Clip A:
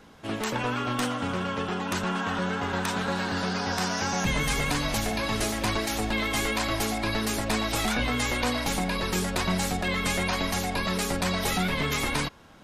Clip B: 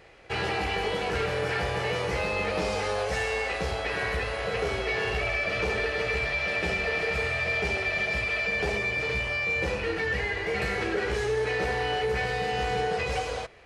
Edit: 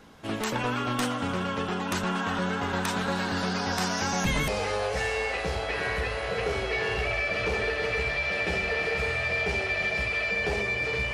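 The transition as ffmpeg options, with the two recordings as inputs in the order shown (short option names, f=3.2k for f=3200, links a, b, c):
-filter_complex "[0:a]apad=whole_dur=11.13,atrim=end=11.13,atrim=end=4.482[a];[1:a]atrim=start=2.638:end=9.29[b];[a][b]acrossfade=d=0.004:c1=hsin:c2=hsin"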